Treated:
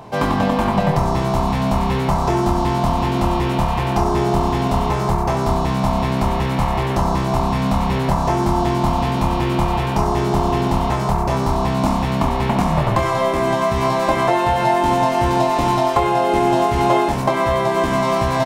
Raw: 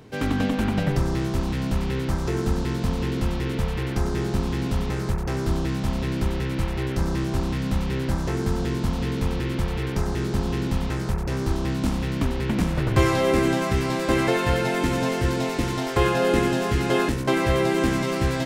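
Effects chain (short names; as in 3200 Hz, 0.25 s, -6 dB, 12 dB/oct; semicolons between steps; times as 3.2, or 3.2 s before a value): band shelf 840 Hz +13.5 dB 1.1 oct; compressor, threshold -19 dBFS, peak gain reduction 10 dB; early reflections 26 ms -7 dB, 69 ms -10.5 dB; on a send at -7 dB: reverb, pre-delay 3 ms; on the sum: gain +5 dB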